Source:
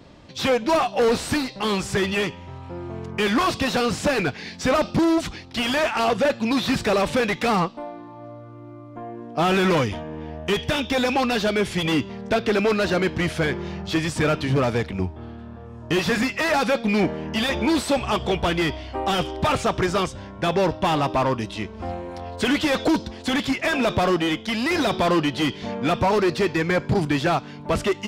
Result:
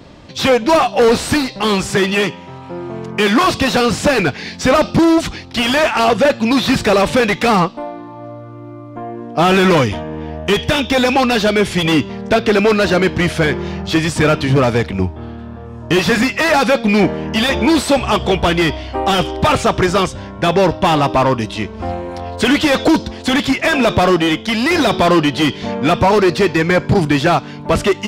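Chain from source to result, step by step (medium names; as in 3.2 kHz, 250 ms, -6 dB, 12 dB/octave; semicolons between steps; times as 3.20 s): 1.90–3.44 s: high-pass 130 Hz 24 dB/octave; trim +8 dB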